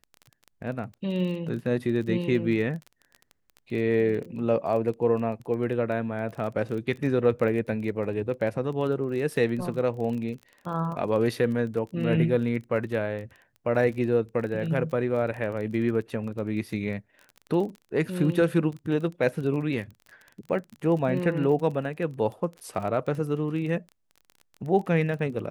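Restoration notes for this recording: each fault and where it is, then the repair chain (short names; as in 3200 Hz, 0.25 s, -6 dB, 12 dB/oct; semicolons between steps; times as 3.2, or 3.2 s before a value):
crackle 24/s -34 dBFS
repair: de-click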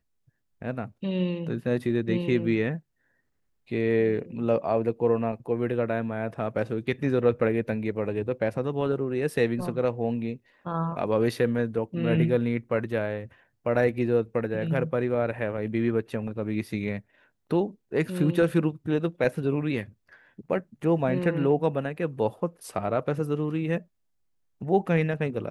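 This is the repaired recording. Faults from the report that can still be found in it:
none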